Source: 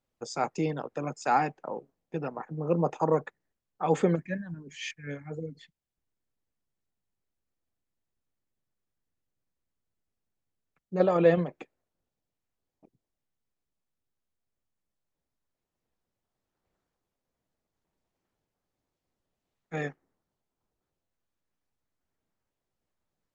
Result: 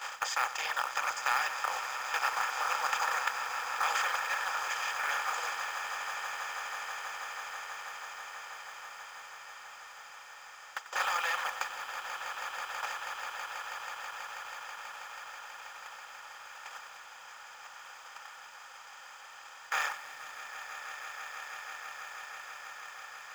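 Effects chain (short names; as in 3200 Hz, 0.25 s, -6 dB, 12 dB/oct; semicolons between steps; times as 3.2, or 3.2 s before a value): per-bin compression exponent 0.2; reverb removal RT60 1.4 s; gate -27 dBFS, range -15 dB; HPF 1200 Hz 24 dB/oct; in parallel at +2.5 dB: compressor 16:1, threshold -41 dBFS, peak gain reduction 18 dB; on the sum: short-mantissa float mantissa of 2-bit; on a send: swelling echo 0.162 s, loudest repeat 8, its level -13 dB; on the sum: lo-fi delay 93 ms, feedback 80%, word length 8-bit, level -14.5 dB; gain -2.5 dB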